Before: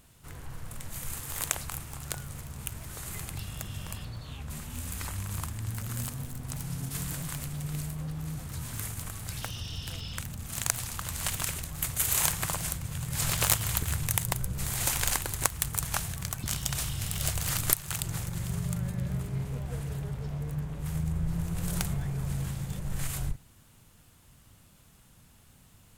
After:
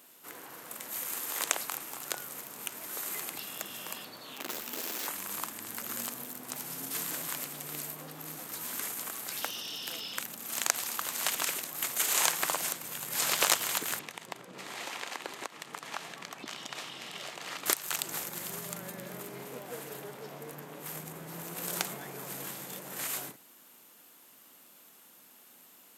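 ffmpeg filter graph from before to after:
-filter_complex "[0:a]asettb=1/sr,asplit=3[s0][s1][s2];[s0]atrim=end=4.354[s3];[s1]atrim=start=4.35:end=5.07,asetpts=PTS-STARTPTS,afade=t=in:d=0.004:c=qsin,afade=t=out:st=0.716:d=0.004:c=qsin,equalizer=f=9400:t=o:w=0.35:g=-7.5,aeval=exprs='(mod(47.3*val(0)+1,2)-1)/47.3':c=same[s4];[s2]atrim=start=5.066[s5];[s3][s4]acrossfade=d=0.004:c1=hsin:c2=qsin[s6];[s6][s5]acrossfade=d=0.004:c1=qsin:c2=hsin,asettb=1/sr,asplit=3[s7][s8][s9];[s7]atrim=end=13.994[s10];[s8]atrim=start=13.99:end=17.66,asetpts=PTS-STARTPTS,afade=t=in:d=0.004:c=qsin,afade=t=out:st=3.666:d=0.004:c=qsin,bandreject=f=1500:w=14,acompressor=threshold=0.0316:ratio=6:attack=3.2:release=140:knee=1:detection=peak,highpass=120,lowpass=3700[s11];[s9]atrim=start=17.656[s12];[s10][s11]acrossfade=d=0.004:c1=hsin:c2=qsin[s13];[s13][s12]acrossfade=d=0.004:c1=qsin:c2=hsin,highpass=f=270:w=0.5412,highpass=f=270:w=1.3066,acrossover=split=8500[s14][s15];[s15]acompressor=threshold=0.00794:ratio=4:attack=1:release=60[s16];[s14][s16]amix=inputs=2:normalize=0,equalizer=f=13000:w=7.3:g=14.5,volume=1.41"

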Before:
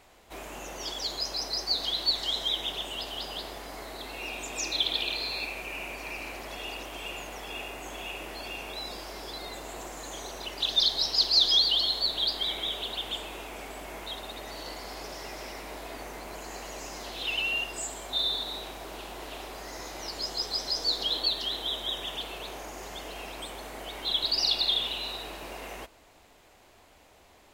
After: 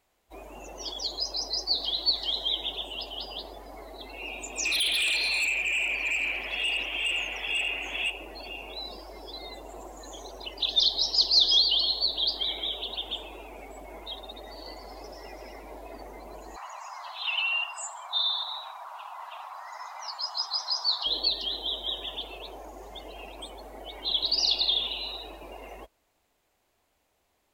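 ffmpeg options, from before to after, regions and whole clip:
-filter_complex "[0:a]asettb=1/sr,asplit=3[s0][s1][s2];[s0]atrim=end=4.654[s3];[s1]atrim=start=4.65:end=8.1,asetpts=PTS-STARTPTS,afade=t=in:d=0.004:c=qsin,afade=t=out:st=3.446:d=0.004:c=qsin,equalizer=f=2600:t=o:w=0.97:g=14,asoftclip=type=hard:threshold=0.0596[s4];[s2]atrim=start=8.096[s5];[s3][s4]acrossfade=d=0.004:c1=hsin:c2=qsin[s6];[s6][s5]acrossfade=d=0.004:c1=qsin:c2=hsin,asettb=1/sr,asplit=3[s7][s8][s9];[s7]atrim=end=16.564[s10];[s8]atrim=start=16.56:end=21.06,asetpts=PTS-STARTPTS,afade=t=in:d=0.004:c=qsin,afade=t=out:st=4.496:d=0.004:c=qsin,acrossover=split=7900[s11][s12];[s12]acompressor=threshold=0.00141:ratio=4:attack=1:release=60[s13];[s11][s13]amix=inputs=2:normalize=0,highpass=f=1000:t=q:w=2.7[s14];[s9]atrim=start=21.056[s15];[s10][s14]acrossfade=d=0.004:c1=hsin:c2=qsin[s16];[s16][s15]acrossfade=d=0.004:c1=qsin:c2=hsin,afftdn=nr=16:nf=-39,highshelf=f=9500:g=9"

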